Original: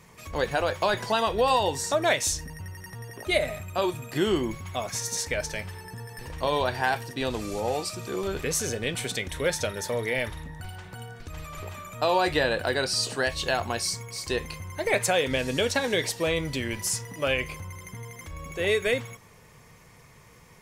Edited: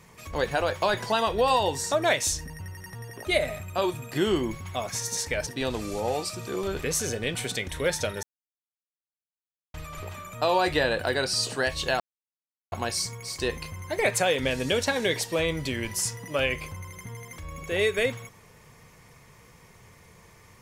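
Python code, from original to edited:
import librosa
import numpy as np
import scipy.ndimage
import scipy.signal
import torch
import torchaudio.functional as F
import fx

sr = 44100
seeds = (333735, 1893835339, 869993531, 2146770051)

y = fx.edit(x, sr, fx.cut(start_s=5.47, length_s=1.6),
    fx.silence(start_s=9.83, length_s=1.51),
    fx.insert_silence(at_s=13.6, length_s=0.72), tone=tone)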